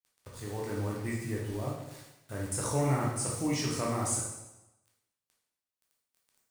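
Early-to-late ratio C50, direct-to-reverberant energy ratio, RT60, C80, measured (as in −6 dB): 2.0 dB, −3.5 dB, 0.95 s, 5.5 dB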